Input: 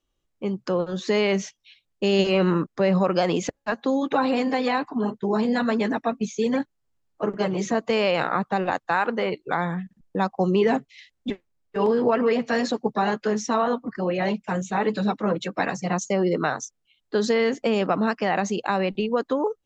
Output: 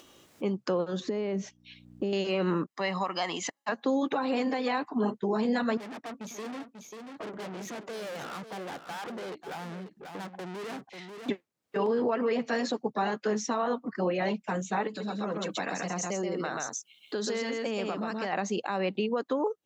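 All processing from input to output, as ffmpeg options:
ffmpeg -i in.wav -filter_complex "[0:a]asettb=1/sr,asplit=3[link_01][link_02][link_03];[link_01]atrim=end=1.004[link_04];[link_02]atrim=start=1:end=2.13,asetpts=PTS-STARTPTS,afade=type=in:duration=0.004:curve=qsin,afade=type=out:start_time=1.126:duration=0.004:curve=qsin,acompressor=threshold=-32dB:ratio=6:attack=3.2:release=140:knee=1:detection=peak,aeval=exprs='val(0)+0.000631*(sin(2*PI*60*n/s)+sin(2*PI*2*60*n/s)/2+sin(2*PI*3*60*n/s)/3+sin(2*PI*4*60*n/s)/4+sin(2*PI*5*60*n/s)/5)':channel_layout=same,tiltshelf=frequency=860:gain=8[link_05];[link_03]atrim=start=2.126[link_06];[link_04][link_05]acrossfade=duration=0.004:curve1=hsin:curve2=qsin[link_07];[link_07][link_06]acrossfade=duration=0.004:curve1=qsin:curve2=hsin,asettb=1/sr,asplit=3[link_08][link_09][link_10];[link_08]atrim=end=2.704[link_11];[link_09]atrim=start=2.7:end=3.69,asetpts=PTS-STARTPTS,afade=type=in:duration=0.004:curve=qsin,afade=type=out:start_time=0.986:duration=0.004:curve=qsin,highpass=frequency=830:poles=1,aecho=1:1:1:0.6,atrim=end_sample=43659[link_12];[link_10]atrim=start=3.686[link_13];[link_11][link_12]acrossfade=duration=0.004:curve1=hsin:curve2=qsin[link_14];[link_14][link_13]acrossfade=duration=0.004:curve1=qsin:curve2=hsin,asettb=1/sr,asplit=3[link_15][link_16][link_17];[link_15]atrim=end=5.774[link_18];[link_16]atrim=start=5.77:end=11.29,asetpts=PTS-STARTPTS,afade=type=in:duration=0.004:curve=qsin,afade=type=out:start_time=5.516:duration=0.004:curve=qsin,highshelf=frequency=2200:gain=-3,aeval=exprs='(tanh(70.8*val(0)+0.65)-tanh(0.65))/70.8':channel_layout=same,aecho=1:1:540:0.266,atrim=end_sample=243432[link_19];[link_17]atrim=start=11.286[link_20];[link_18][link_19]acrossfade=duration=0.004:curve1=hsin:curve2=qsin[link_21];[link_21][link_20]acrossfade=duration=0.004:curve1=qsin:curve2=hsin,asettb=1/sr,asplit=3[link_22][link_23][link_24];[link_22]atrim=end=14.874[link_25];[link_23]atrim=start=14.87:end=18.33,asetpts=PTS-STARTPTS,afade=type=in:duration=0.004:curve=qsin,afade=type=out:start_time=3.456:duration=0.004:curve=qsin,highshelf=frequency=5400:gain=10,aecho=1:1:131:0.631,atrim=end_sample=152586,acompressor=threshold=-31dB:ratio=3:attack=3.2:release=140:knee=1:detection=peak[link_26];[link_24]atrim=start=18.326[link_27];[link_25][link_26]acrossfade=duration=0.004:curve1=hsin:curve2=qsin[link_28];[link_28][link_27]acrossfade=duration=0.004:curve1=qsin:curve2=hsin,highpass=170,acompressor=mode=upward:threshold=-36dB:ratio=2.5,alimiter=limit=-19.5dB:level=0:latency=1:release=396" out.wav

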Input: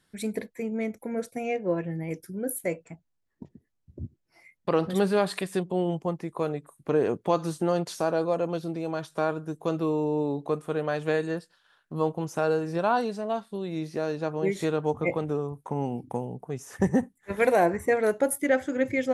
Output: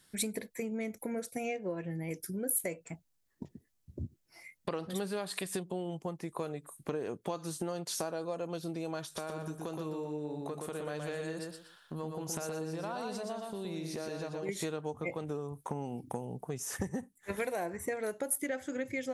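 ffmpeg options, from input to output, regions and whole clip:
ffmpeg -i in.wav -filter_complex "[0:a]asettb=1/sr,asplit=3[link_01][link_02][link_03];[link_01]atrim=end=9.044[link_04];[link_02]atrim=start=9.04:end=14.49,asetpts=PTS-STARTPTS,afade=type=in:duration=0.004:curve=qsin,afade=type=out:start_time=5.446:duration=0.004:curve=qsin,acompressor=threshold=-37dB:ratio=3:attack=3.2:release=140:knee=1:detection=peak,aecho=1:1:120|240|360:0.631|0.158|0.0394,atrim=end_sample=240345[link_05];[link_03]atrim=start=14.486[link_06];[link_04][link_05]acrossfade=duration=0.004:curve1=hsin:curve2=qsin[link_07];[link_07][link_06]acrossfade=duration=0.004:curve1=qsin:curve2=hsin,acompressor=threshold=-34dB:ratio=6,highshelf=frequency=3700:gain=10.5" out.wav

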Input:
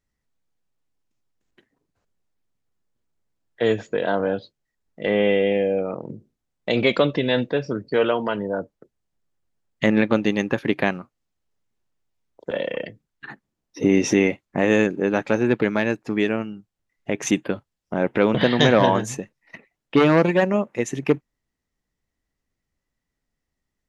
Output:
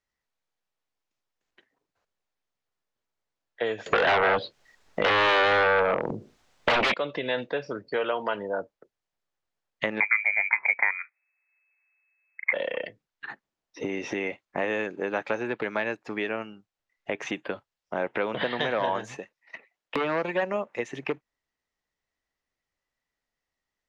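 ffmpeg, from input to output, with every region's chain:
ffmpeg -i in.wav -filter_complex "[0:a]asettb=1/sr,asplit=3[link_01][link_02][link_03];[link_01]atrim=end=3.864[link_04];[link_02]atrim=start=3.86:end=6.94,asetpts=PTS-STARTPTS,afade=type=in:duration=0.004:curve=qsin,afade=type=out:start_time=3.076:duration=0.004:curve=qsin,acontrast=58,aeval=exprs='0.708*sin(PI/2*5.01*val(0)/0.708)':channel_layout=same[link_05];[link_03]atrim=start=6.936[link_06];[link_04][link_05]acrossfade=duration=0.004:curve1=hsin:curve2=qsin[link_07];[link_07][link_06]acrossfade=duration=0.004:curve1=qsin:curve2=hsin,asettb=1/sr,asplit=3[link_08][link_09][link_10];[link_08]atrim=end=10.004[link_11];[link_09]atrim=start=10:end=12.53,asetpts=PTS-STARTPTS,afade=type=in:duration=0.004:curve=qsin,afade=type=out:start_time=2.526:duration=0.004:curve=qsin,equalizer=frequency=560:width=0.65:gain=10.5,lowpass=frequency=2200:width_type=q:width=0.5098,lowpass=frequency=2200:width_type=q:width=0.6013,lowpass=frequency=2200:width_type=q:width=0.9,lowpass=frequency=2200:width_type=q:width=2.563,afreqshift=-2600[link_12];[link_10]atrim=start=12.526[link_13];[link_11][link_12]acrossfade=duration=0.004:curve1=hsin:curve2=qsin[link_14];[link_14][link_13]acrossfade=duration=0.004:curve1=qsin:curve2=hsin,asettb=1/sr,asplit=3[link_15][link_16][link_17];[link_15]atrim=end=19.164[link_18];[link_16]atrim=start=19.16:end=19.96,asetpts=PTS-STARTPTS,afade=type=in:duration=0.004:curve=qsin,afade=type=out:start_time=0.796:duration=0.004:curve=qsin,lowshelf=frequency=150:gain=-10.5,aeval=exprs='(mod(5.62*val(0)+1,2)-1)/5.62':channel_layout=same[link_19];[link_17]atrim=start=19.956[link_20];[link_18][link_19]acrossfade=duration=0.004:curve1=hsin:curve2=qsin[link_21];[link_21][link_20]acrossfade=duration=0.004:curve1=qsin:curve2=hsin,acompressor=threshold=-19dB:ratio=6,acrossover=split=460 6800:gain=0.224 1 0.224[link_22][link_23][link_24];[link_22][link_23][link_24]amix=inputs=3:normalize=0,acrossover=split=3600[link_25][link_26];[link_26]acompressor=threshold=-51dB:ratio=4:attack=1:release=60[link_27];[link_25][link_27]amix=inputs=2:normalize=0" out.wav

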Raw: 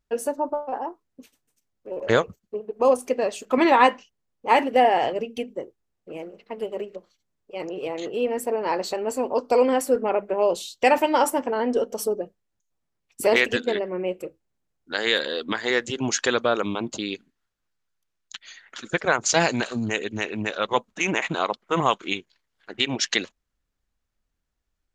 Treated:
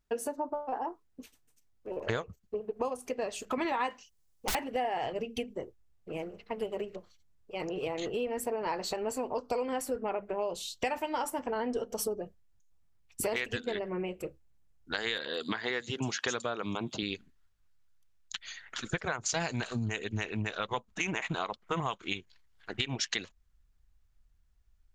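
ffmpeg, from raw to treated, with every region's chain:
ffmpeg -i in.wav -filter_complex "[0:a]asettb=1/sr,asplit=3[link_01][link_02][link_03];[link_01]atrim=end=3.904[link_04];[link_02]atrim=start=3.9:end=4.55,asetpts=PTS-STARTPTS,afade=type=in:duration=0.004:curve=qsin,afade=type=out:start_time=0.646:duration=0.004:curve=qsin,bass=frequency=250:gain=-4,treble=frequency=4000:gain=11,aeval=exprs='(mod(10.6*val(0)+1,2)-1)/10.6':channel_layout=same[link_05];[link_03]atrim=start=4.546[link_06];[link_04][link_05]acrossfade=duration=0.004:curve1=hsin:curve2=qsin[link_07];[link_07][link_06]acrossfade=duration=0.004:curve1=qsin:curve2=hsin,asettb=1/sr,asplit=3[link_08][link_09][link_10];[link_08]atrim=end=15.184[link_11];[link_09]atrim=start=15.18:end=17.03,asetpts=PTS-STARTPTS,afade=type=in:duration=0.004:curve=qsin,afade=type=out:start_time=1.846:duration=0.004:curve=qsin,highpass=130,acrossover=split=5600[link_12][link_13];[link_13]adelay=160[link_14];[link_12][link_14]amix=inputs=2:normalize=0,atrim=end_sample=81585[link_15];[link_10]atrim=start=17.026[link_16];[link_11][link_15]acrossfade=duration=0.004:curve1=hsin:curve2=qsin[link_17];[link_17][link_16]acrossfade=duration=0.004:curve1=qsin:curve2=hsin,asubboost=boost=4.5:cutoff=120,acompressor=threshold=-30dB:ratio=5,bandreject=frequency=550:width=12" out.wav

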